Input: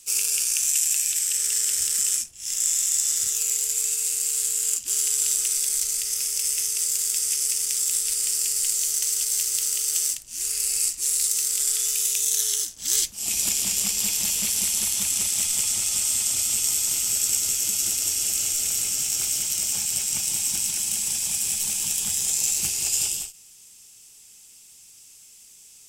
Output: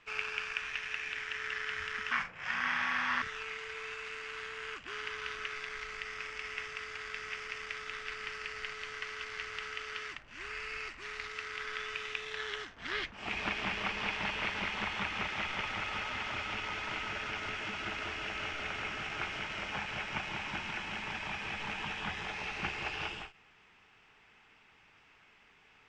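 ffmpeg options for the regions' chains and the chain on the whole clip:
ffmpeg -i in.wav -filter_complex "[0:a]asettb=1/sr,asplit=3[link_01][link_02][link_03];[link_01]atrim=end=2.114[link_04];[link_02]atrim=start=2.11:end=3.22,asetpts=PTS-STARTPTS,afade=type=in:duration=0.004:curve=qsin,afade=type=out:start_time=1.106:duration=0.004:curve=qsin,equalizer=frequency=900:width=0.36:gain=10.5,afreqshift=-190,asplit=2[link_05][link_06];[link_06]adelay=40,volume=-10dB[link_07];[link_05][link_07]amix=inputs=2:normalize=0,atrim=end_sample=48951[link_08];[link_03]atrim=start=3.216[link_09];[link_04][link_08]acrossfade=duration=0.004:curve1=hsin:curve2=qsin[link_10];[link_10][link_09]acrossfade=duration=0.004:curve1=qsin:curve2=hsin,afftfilt=real='re*lt(hypot(re,im),0.141)':imag='im*lt(hypot(re,im),0.141)':win_size=1024:overlap=0.75,lowpass=frequency=1800:width=0.5412,lowpass=frequency=1800:width=1.3066,tiltshelf=frequency=650:gain=-8.5,volume=6.5dB" out.wav

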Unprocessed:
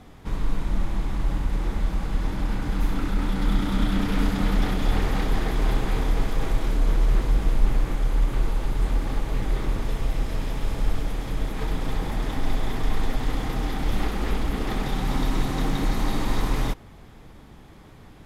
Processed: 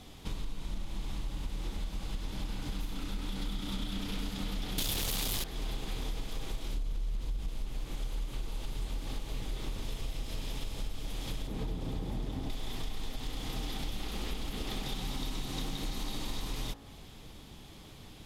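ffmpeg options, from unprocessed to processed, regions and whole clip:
ffmpeg -i in.wav -filter_complex "[0:a]asettb=1/sr,asplit=3[link_01][link_02][link_03];[link_01]atrim=end=4.784[link_04];[link_02]atrim=start=4.78:end=5.44,asetpts=PTS-STARTPTS,afade=type=in:duration=0.004:curve=qsin,afade=type=out:start_time=0.656:duration=0.004:curve=qsin,aemphasis=mode=production:type=75fm,aeval=exprs='0.316*sin(PI/2*3.16*val(0)/0.316)':channel_layout=same[link_05];[link_03]atrim=start=5.436[link_06];[link_04][link_05]acrossfade=duration=0.004:curve1=hsin:curve2=qsin[link_07];[link_07][link_06]acrossfade=duration=0.004:curve1=qsin:curve2=hsin,asettb=1/sr,asplit=3[link_08][link_09][link_10];[link_08]atrim=end=6.744[link_11];[link_09]atrim=start=6.74:end=7.48,asetpts=PTS-STARTPTS,afade=type=in:duration=0.004:curve=qsin,afade=type=out:start_time=0.736:duration=0.004:curve=qsin,lowshelf=frequency=110:gain=8.5,acompressor=threshold=-10dB:ratio=6:attack=3.2:release=140:knee=1:detection=peak[link_12];[link_10]atrim=start=7.476[link_13];[link_11][link_12]acrossfade=duration=0.004:curve1=hsin:curve2=qsin[link_14];[link_14][link_13]acrossfade=duration=0.004:curve1=qsin:curve2=hsin,asettb=1/sr,asplit=3[link_15][link_16][link_17];[link_15]atrim=end=11.474[link_18];[link_16]atrim=start=11.47:end=12.5,asetpts=PTS-STARTPTS,afade=type=in:duration=0.004:curve=qsin,afade=type=out:start_time=1.026:duration=0.004:curve=qsin,highpass=44,tiltshelf=frequency=890:gain=7.5[link_19];[link_17]atrim=start=12.496[link_20];[link_18][link_19]acrossfade=duration=0.004:curve1=hsin:curve2=qsin[link_21];[link_21][link_20]acrossfade=duration=0.004:curve1=qsin:curve2=hsin,highshelf=frequency=2400:width_type=q:width=1.5:gain=8,bandreject=frequency=55.58:width_type=h:width=4,bandreject=frequency=111.16:width_type=h:width=4,bandreject=frequency=166.74:width_type=h:width=4,bandreject=frequency=222.32:width_type=h:width=4,bandreject=frequency=277.9:width_type=h:width=4,bandreject=frequency=333.48:width_type=h:width=4,bandreject=frequency=389.06:width_type=h:width=4,bandreject=frequency=444.64:width_type=h:width=4,bandreject=frequency=500.22:width_type=h:width=4,bandreject=frequency=555.8:width_type=h:width=4,bandreject=frequency=611.38:width_type=h:width=4,bandreject=frequency=666.96:width_type=h:width=4,bandreject=frequency=722.54:width_type=h:width=4,bandreject=frequency=778.12:width_type=h:width=4,bandreject=frequency=833.7:width_type=h:width=4,bandreject=frequency=889.28:width_type=h:width=4,bandreject=frequency=944.86:width_type=h:width=4,bandreject=frequency=1000.44:width_type=h:width=4,bandreject=frequency=1056.02:width_type=h:width=4,bandreject=frequency=1111.6:width_type=h:width=4,bandreject=frequency=1167.18:width_type=h:width=4,bandreject=frequency=1222.76:width_type=h:width=4,bandreject=frequency=1278.34:width_type=h:width=4,bandreject=frequency=1333.92:width_type=h:width=4,bandreject=frequency=1389.5:width_type=h:width=4,bandreject=frequency=1445.08:width_type=h:width=4,bandreject=frequency=1500.66:width_type=h:width=4,bandreject=frequency=1556.24:width_type=h:width=4,bandreject=frequency=1611.82:width_type=h:width=4,bandreject=frequency=1667.4:width_type=h:width=4,bandreject=frequency=1722.98:width_type=h:width=4,bandreject=frequency=1778.56:width_type=h:width=4,bandreject=frequency=1834.14:width_type=h:width=4,bandreject=frequency=1889.72:width_type=h:width=4,bandreject=frequency=1945.3:width_type=h:width=4,acompressor=threshold=-29dB:ratio=6,volume=-3.5dB" out.wav

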